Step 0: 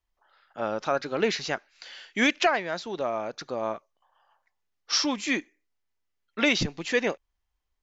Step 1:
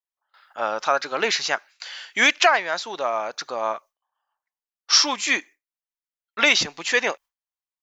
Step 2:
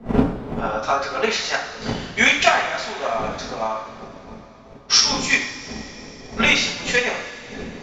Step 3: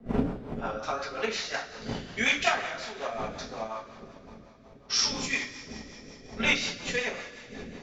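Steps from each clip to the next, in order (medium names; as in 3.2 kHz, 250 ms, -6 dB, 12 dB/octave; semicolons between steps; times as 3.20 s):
peaking EQ 980 Hz +8.5 dB 1.9 oct; gate with hold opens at -47 dBFS; tilt EQ +3.5 dB/octave
wind noise 410 Hz -33 dBFS; two-slope reverb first 0.55 s, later 4.1 s, from -18 dB, DRR -6.5 dB; transient shaper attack +6 dB, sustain +1 dB; trim -7.5 dB
rotary cabinet horn 5.5 Hz; trim -7 dB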